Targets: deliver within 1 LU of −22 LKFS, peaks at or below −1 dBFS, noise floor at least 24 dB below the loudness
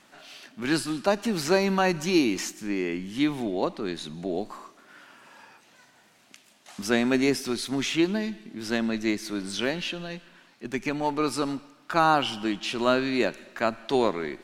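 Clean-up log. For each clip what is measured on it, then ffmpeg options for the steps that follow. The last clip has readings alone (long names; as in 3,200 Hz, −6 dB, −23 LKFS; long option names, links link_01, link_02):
integrated loudness −27.0 LKFS; sample peak −7.5 dBFS; target loudness −22.0 LKFS
→ -af "volume=5dB"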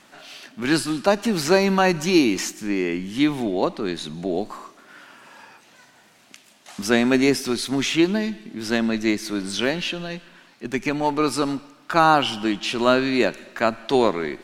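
integrated loudness −22.0 LKFS; sample peak −2.5 dBFS; background noise floor −54 dBFS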